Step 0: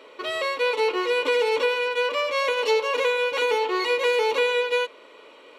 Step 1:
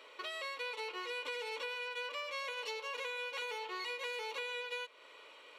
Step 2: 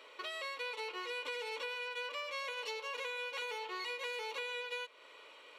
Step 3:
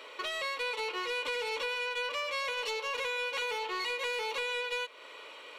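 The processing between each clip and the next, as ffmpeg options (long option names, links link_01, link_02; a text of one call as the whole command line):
ffmpeg -i in.wav -af "highpass=frequency=1300:poles=1,acompressor=threshold=-38dB:ratio=3,volume=-3.5dB" out.wav
ffmpeg -i in.wav -af anull out.wav
ffmpeg -i in.wav -af "asoftclip=type=tanh:threshold=-34.5dB,volume=8dB" out.wav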